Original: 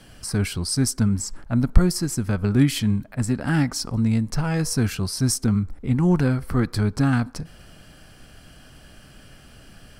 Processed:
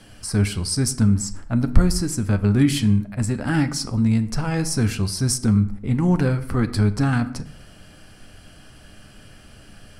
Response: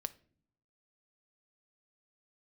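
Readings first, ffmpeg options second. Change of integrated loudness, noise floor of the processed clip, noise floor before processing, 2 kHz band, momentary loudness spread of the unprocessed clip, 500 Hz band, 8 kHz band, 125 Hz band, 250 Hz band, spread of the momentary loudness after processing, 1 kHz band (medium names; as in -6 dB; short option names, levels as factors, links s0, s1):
+1.5 dB, -47 dBFS, -49 dBFS, +1.0 dB, 6 LU, +0.5 dB, +1.0 dB, +2.0 dB, +1.5 dB, 6 LU, +1.0 dB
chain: -filter_complex "[1:a]atrim=start_sample=2205,afade=t=out:st=0.17:d=0.01,atrim=end_sample=7938,asetrate=22491,aresample=44100[s0];[0:a][s0]afir=irnorm=-1:irlink=0,volume=0.891"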